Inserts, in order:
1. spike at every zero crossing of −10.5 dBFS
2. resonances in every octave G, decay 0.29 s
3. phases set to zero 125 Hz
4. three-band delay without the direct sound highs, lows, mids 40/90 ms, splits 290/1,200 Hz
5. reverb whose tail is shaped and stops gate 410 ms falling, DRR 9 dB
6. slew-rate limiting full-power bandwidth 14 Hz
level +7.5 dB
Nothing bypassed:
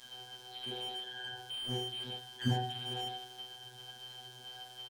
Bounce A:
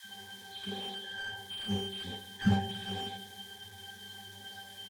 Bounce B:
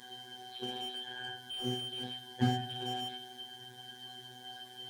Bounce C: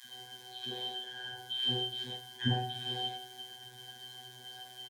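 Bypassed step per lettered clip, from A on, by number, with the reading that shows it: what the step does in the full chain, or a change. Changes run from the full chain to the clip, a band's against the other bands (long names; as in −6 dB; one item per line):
3, 250 Hz band +6.5 dB
4, change in momentary loudness spread +1 LU
6, distortion level −5 dB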